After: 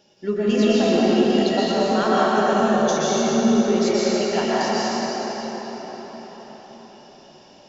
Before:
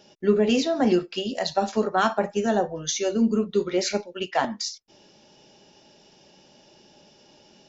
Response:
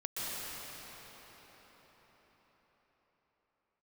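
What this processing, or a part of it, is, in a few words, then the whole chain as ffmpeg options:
cathedral: -filter_complex "[1:a]atrim=start_sample=2205[s0];[0:a][s0]afir=irnorm=-1:irlink=0"

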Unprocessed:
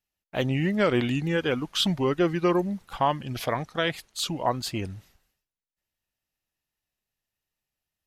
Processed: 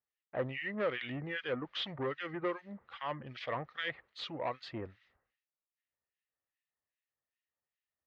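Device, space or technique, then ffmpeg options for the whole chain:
guitar amplifier with harmonic tremolo: -filter_complex "[0:a]acrossover=split=1600[s0][s1];[s0]aeval=exprs='val(0)*(1-1/2+1/2*cos(2*PI*2.5*n/s))':c=same[s2];[s1]aeval=exprs='val(0)*(1-1/2-1/2*cos(2*PI*2.5*n/s))':c=same[s3];[s2][s3]amix=inputs=2:normalize=0,asoftclip=type=tanh:threshold=0.0562,highpass=79,equalizer=f=100:t=q:w=4:g=-5,equalizer=f=180:t=q:w=4:g=-10,equalizer=f=280:t=q:w=4:g=-3,equalizer=f=520:t=q:w=4:g=6,equalizer=f=1200:t=q:w=4:g=6,equalizer=f=1900:t=q:w=4:g=9,lowpass=f=3700:w=0.5412,lowpass=f=3700:w=1.3066,volume=0.531"

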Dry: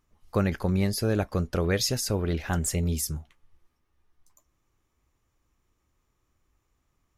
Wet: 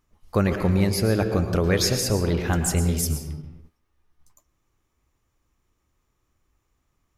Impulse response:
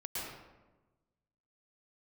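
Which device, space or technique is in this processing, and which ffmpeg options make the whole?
keyed gated reverb: -filter_complex "[0:a]asplit=3[s0][s1][s2];[1:a]atrim=start_sample=2205[s3];[s1][s3]afir=irnorm=-1:irlink=0[s4];[s2]apad=whole_len=316526[s5];[s4][s5]sidechaingate=range=0.0224:threshold=0.00112:ratio=16:detection=peak,volume=0.531[s6];[s0][s6]amix=inputs=2:normalize=0,volume=1.19"

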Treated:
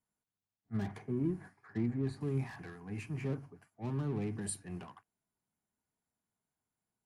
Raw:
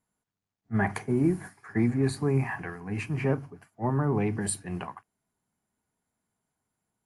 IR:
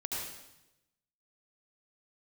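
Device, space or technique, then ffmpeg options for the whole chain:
one-band saturation: -filter_complex "[0:a]asettb=1/sr,asplit=3[s0][s1][s2];[s0]atrim=end=0.774[s3];[s1]atrim=start=0.77:end=2.21,asetpts=PTS-STARTPTS,afade=t=in:d=0.004:c=qsin,afade=t=out:st=1.436:d=0.004:c=qsin,aemphasis=mode=reproduction:type=75kf[s4];[s2]atrim=start=2.206[s5];[s3][s4]acrossfade=d=0.004:c1=hsin:c2=qsin[s6];[s6][s5]acrossfade=d=0.004:c1=qsin:c2=hsin,acrossover=split=420|3500[s7][s8][s9];[s8]asoftclip=type=tanh:threshold=0.0112[s10];[s7][s10][s9]amix=inputs=3:normalize=0,volume=0.376"

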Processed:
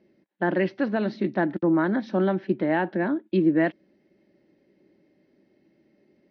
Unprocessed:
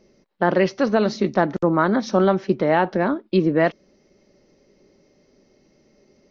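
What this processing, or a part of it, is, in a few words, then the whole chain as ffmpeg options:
guitar cabinet: -af "highpass=87,equalizer=f=190:t=q:w=4:g=3,equalizer=f=320:t=q:w=4:g=9,equalizer=f=450:t=q:w=4:g=-5,equalizer=f=1200:t=q:w=4:g=-7,equalizer=f=1700:t=q:w=4:g=6,lowpass=f=3800:w=0.5412,lowpass=f=3800:w=1.3066,volume=0.447"

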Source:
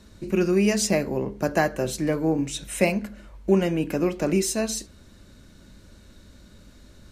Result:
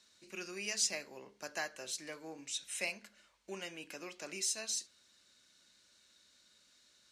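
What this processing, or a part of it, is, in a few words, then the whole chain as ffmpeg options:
piezo pickup straight into a mixer: -af "lowpass=5600,aderivative"

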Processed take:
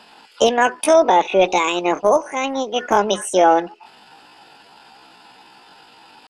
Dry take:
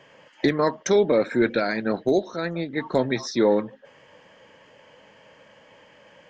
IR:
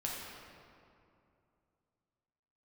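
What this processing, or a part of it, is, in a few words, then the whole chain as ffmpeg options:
chipmunk voice: -filter_complex "[0:a]asetrate=70004,aresample=44100,atempo=0.629961,asplit=3[s0][s1][s2];[s0]afade=t=out:st=0.93:d=0.02[s3];[s1]lowpass=f=6300:w=0.5412,lowpass=f=6300:w=1.3066,afade=t=in:st=0.93:d=0.02,afade=t=out:st=1.43:d=0.02[s4];[s2]afade=t=in:st=1.43:d=0.02[s5];[s3][s4][s5]amix=inputs=3:normalize=0,volume=2"

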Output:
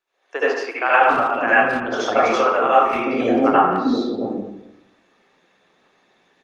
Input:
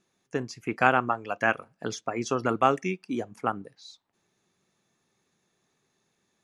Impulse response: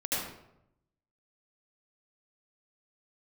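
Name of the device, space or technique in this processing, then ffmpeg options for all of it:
speakerphone in a meeting room: -filter_complex "[0:a]asettb=1/sr,asplit=3[s0][s1][s2];[s0]atrim=end=2.014[s3];[s1]atrim=start=2.01:end=3.15,asetpts=PTS-STARTPTS,afade=t=in:d=0.004:c=qsin,afade=t=out:st=1.136:d=0.004:c=qsin,asplit=2[s4][s5];[s5]adelay=35,volume=0.335[s6];[s4][s6]amix=inputs=2:normalize=0,atrim=end_sample=50274[s7];[s2]atrim=start=3.146[s8];[s3][s7]acrossfade=d=0.004:c1=hsin:c2=qsin[s9];[s9][s8]acrossfade=d=0.004:c1=qsin:c2=hsin,acrossover=split=270 4700:gain=0.0891 1 0.1[s10][s11][s12];[s10][s11][s12]amix=inputs=3:normalize=0,acrossover=split=410[s13][s14];[s13]adelay=670[s15];[s15][s14]amix=inputs=2:normalize=0[s16];[1:a]atrim=start_sample=2205[s17];[s16][s17]afir=irnorm=-1:irlink=0,asplit=2[s18][s19];[s19]adelay=170,highpass=300,lowpass=3400,asoftclip=type=hard:threshold=0.211,volume=0.282[s20];[s18][s20]amix=inputs=2:normalize=0,dynaudnorm=f=100:g=5:m=4.47,volume=0.891" -ar 48000 -c:a libopus -b:a 32k

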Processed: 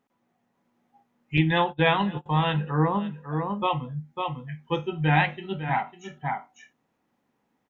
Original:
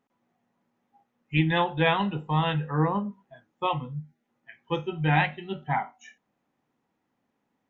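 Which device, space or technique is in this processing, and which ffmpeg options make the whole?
ducked delay: -filter_complex "[0:a]asplit=3[s0][s1][s2];[s1]adelay=550,volume=0.668[s3];[s2]apad=whole_len=363509[s4];[s3][s4]sidechaincompress=threshold=0.0158:ratio=8:attack=9.2:release=451[s5];[s0][s5]amix=inputs=2:normalize=0,asettb=1/sr,asplit=3[s6][s7][s8];[s6]atrim=end=1.374[s9];[s7]atrim=start=1.37:end=2.26,asetpts=PTS-STARTPTS,afade=t=in:d=0.004:c=qsin,afade=t=out:st=0.886:d=0.004:c=qsin,agate=range=0.0708:threshold=0.0355:ratio=16:detection=peak[s10];[s8]atrim=start=2.256[s11];[s9][s10]acrossfade=d=0.004:c1=hsin:c2=qsin[s12];[s12][s11]acrossfade=d=0.004:c1=qsin:c2=hsin,volume=1.19"

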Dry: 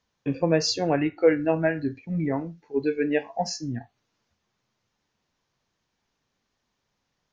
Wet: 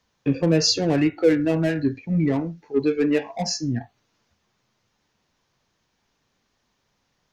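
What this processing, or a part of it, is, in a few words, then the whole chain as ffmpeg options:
one-band saturation: -filter_complex "[0:a]acrossover=split=460|2500[s0][s1][s2];[s1]asoftclip=type=tanh:threshold=0.015[s3];[s0][s3][s2]amix=inputs=3:normalize=0,volume=2"

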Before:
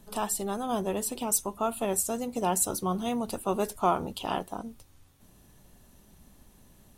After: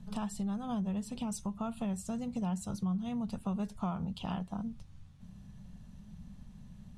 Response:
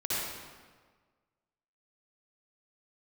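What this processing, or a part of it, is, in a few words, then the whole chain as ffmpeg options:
jukebox: -af "lowpass=5800,lowshelf=f=250:t=q:w=3:g=9.5,acompressor=threshold=0.0282:ratio=3,volume=0.631"

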